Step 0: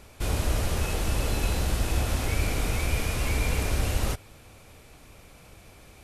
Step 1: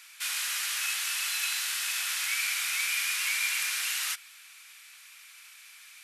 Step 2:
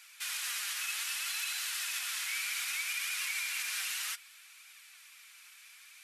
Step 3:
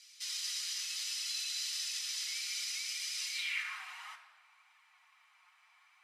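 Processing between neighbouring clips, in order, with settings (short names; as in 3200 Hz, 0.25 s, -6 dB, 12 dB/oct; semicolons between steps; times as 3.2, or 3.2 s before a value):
inverse Chebyshev high-pass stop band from 260 Hz, stop band 80 dB; gain +6 dB
limiter -22 dBFS, peak gain reduction 5 dB; flange 0.64 Hz, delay 1.2 ms, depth 4.5 ms, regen +52%
band-pass sweep 5100 Hz -> 860 Hz, 3.31–3.81; reverb RT60 1.3 s, pre-delay 6 ms, DRR 3 dB; gain +2 dB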